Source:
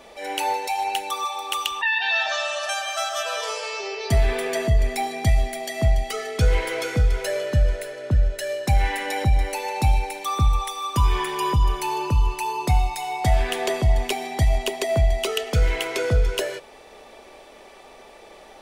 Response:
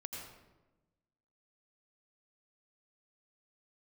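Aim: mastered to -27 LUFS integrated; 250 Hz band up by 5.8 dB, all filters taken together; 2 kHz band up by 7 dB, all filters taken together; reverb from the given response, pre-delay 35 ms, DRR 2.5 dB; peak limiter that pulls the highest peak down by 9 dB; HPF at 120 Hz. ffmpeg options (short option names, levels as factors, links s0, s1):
-filter_complex "[0:a]highpass=120,equalizer=f=250:t=o:g=8.5,equalizer=f=2000:t=o:g=8.5,alimiter=limit=0.188:level=0:latency=1,asplit=2[s0][s1];[1:a]atrim=start_sample=2205,adelay=35[s2];[s1][s2]afir=irnorm=-1:irlink=0,volume=0.891[s3];[s0][s3]amix=inputs=2:normalize=0,volume=0.596"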